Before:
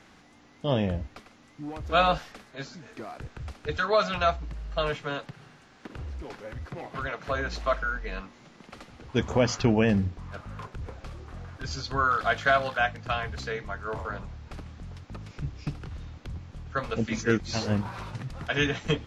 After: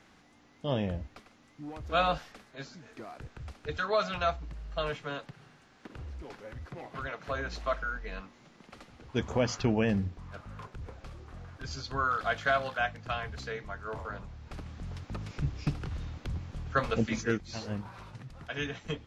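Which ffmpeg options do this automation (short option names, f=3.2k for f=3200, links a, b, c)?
-af "volume=2dB,afade=t=in:st=14.33:d=0.65:silence=0.446684,afade=t=out:st=16.81:d=0.63:silence=0.266073"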